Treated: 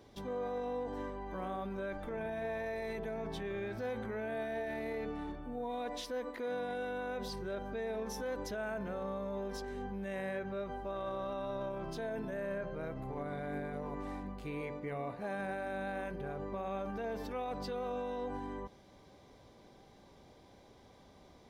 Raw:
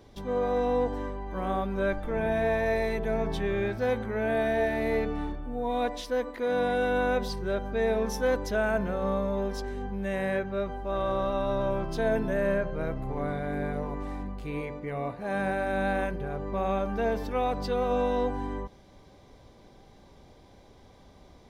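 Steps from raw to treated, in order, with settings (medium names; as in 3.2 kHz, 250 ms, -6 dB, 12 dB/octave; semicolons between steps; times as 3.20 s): peak limiter -27.5 dBFS, peak gain reduction 11.5 dB; bass shelf 66 Hz -11.5 dB; trim -3.5 dB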